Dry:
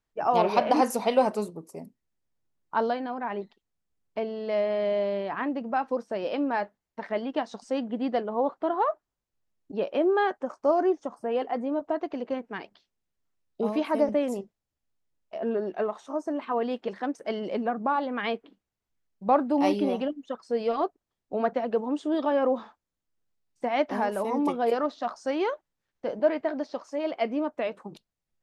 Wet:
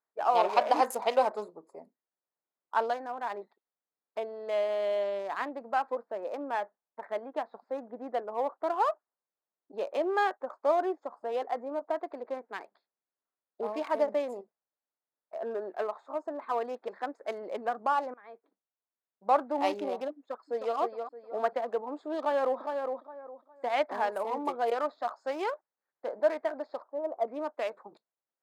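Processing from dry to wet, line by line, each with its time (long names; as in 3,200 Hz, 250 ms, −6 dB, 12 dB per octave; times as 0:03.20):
0:05.95–0:08.63: high-frequency loss of the air 380 metres
0:18.14–0:19.44: fade in, from −23 dB
0:20.16–0:20.77: delay throw 310 ms, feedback 35%, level −5.5 dB
0:22.19–0:22.59: delay throw 410 ms, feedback 25%, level −5 dB
0:26.82–0:27.28: low-pass filter 1,100 Hz 24 dB per octave
whole clip: adaptive Wiener filter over 15 samples; high-pass filter 570 Hz 12 dB per octave; notch filter 5,700 Hz, Q 13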